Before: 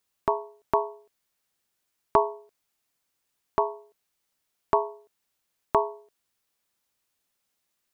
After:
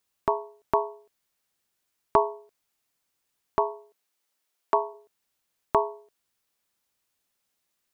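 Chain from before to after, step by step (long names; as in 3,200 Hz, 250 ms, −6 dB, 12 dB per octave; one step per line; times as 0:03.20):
0:03.71–0:04.93: high-pass filter 170 Hz → 400 Hz 12 dB per octave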